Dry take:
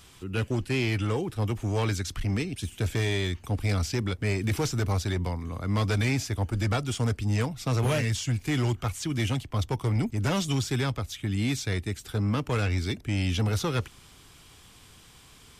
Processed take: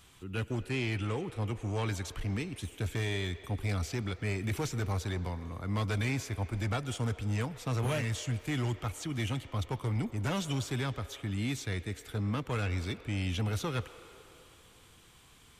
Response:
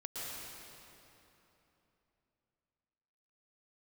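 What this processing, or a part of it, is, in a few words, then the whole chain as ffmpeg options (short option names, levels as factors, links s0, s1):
filtered reverb send: -filter_complex "[0:a]asettb=1/sr,asplit=3[s0][s1][s2];[s0]atrim=end=0.704[s3];[s1]atrim=start=0.7:end=1.86,asetpts=PTS-STARTPTS,afade=t=in:d=0.004:c=qsin,afade=t=out:st=1.156:d=0.004:c=qsin,lowpass=f=11000:w=0.5412,lowpass=f=11000:w=1.3066[s4];[s2]atrim=start=1.856[s5];[s3][s4]acrossfade=d=0.004:c1=hsin:c2=qsin[s6];[s6][s5]acrossfade=d=0.004:c1=qsin:c2=hsin,asplit=2[s7][s8];[s8]highpass=f=360:w=0.5412,highpass=f=360:w=1.3066,lowpass=4300[s9];[1:a]atrim=start_sample=2205[s10];[s9][s10]afir=irnorm=-1:irlink=0,volume=0.237[s11];[s7][s11]amix=inputs=2:normalize=0,equalizer=f=5100:w=5.1:g=-5.5,volume=0.501"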